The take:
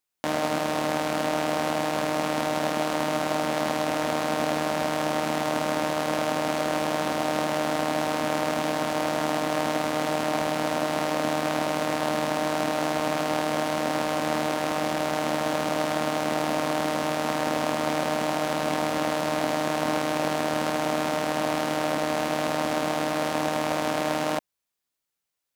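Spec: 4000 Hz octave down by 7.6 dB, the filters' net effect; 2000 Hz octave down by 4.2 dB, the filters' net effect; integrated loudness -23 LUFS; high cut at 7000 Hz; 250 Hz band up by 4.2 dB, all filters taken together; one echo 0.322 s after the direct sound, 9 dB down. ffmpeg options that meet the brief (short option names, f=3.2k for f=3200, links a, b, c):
-af "lowpass=7k,equalizer=f=250:t=o:g=5.5,equalizer=f=2k:t=o:g=-3.5,equalizer=f=4k:t=o:g=-8.5,aecho=1:1:322:0.355,volume=2.5dB"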